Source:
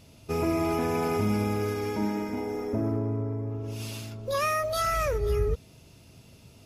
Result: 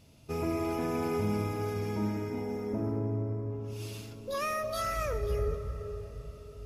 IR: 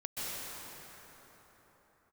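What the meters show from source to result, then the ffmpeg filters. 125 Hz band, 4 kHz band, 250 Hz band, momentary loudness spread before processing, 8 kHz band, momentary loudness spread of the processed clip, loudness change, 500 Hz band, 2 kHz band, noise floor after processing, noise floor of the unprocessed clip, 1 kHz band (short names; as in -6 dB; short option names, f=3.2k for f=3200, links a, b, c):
-3.0 dB, -6.0 dB, -4.5 dB, 8 LU, -6.0 dB, 9 LU, -5.0 dB, -4.5 dB, -6.0 dB, -48 dBFS, -54 dBFS, -6.0 dB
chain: -filter_complex "[0:a]asplit=2[a][b];[1:a]atrim=start_sample=2205,lowshelf=f=420:g=11.5[c];[b][c]afir=irnorm=-1:irlink=0,volume=-15.5dB[d];[a][d]amix=inputs=2:normalize=0,volume=-7dB"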